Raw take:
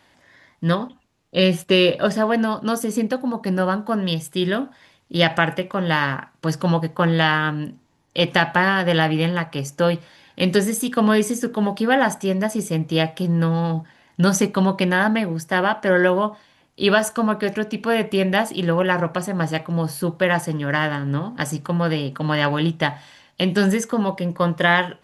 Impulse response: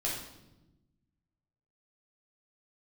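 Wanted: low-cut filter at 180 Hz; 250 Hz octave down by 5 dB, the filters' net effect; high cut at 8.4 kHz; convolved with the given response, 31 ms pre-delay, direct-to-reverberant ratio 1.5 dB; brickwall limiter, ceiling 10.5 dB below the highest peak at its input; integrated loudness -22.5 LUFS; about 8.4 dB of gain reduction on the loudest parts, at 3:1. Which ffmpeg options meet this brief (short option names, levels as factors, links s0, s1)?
-filter_complex "[0:a]highpass=180,lowpass=8400,equalizer=f=250:t=o:g=-4.5,acompressor=threshold=0.0631:ratio=3,alimiter=limit=0.133:level=0:latency=1,asplit=2[s0][s1];[1:a]atrim=start_sample=2205,adelay=31[s2];[s1][s2]afir=irnorm=-1:irlink=0,volume=0.473[s3];[s0][s3]amix=inputs=2:normalize=0,volume=1.78"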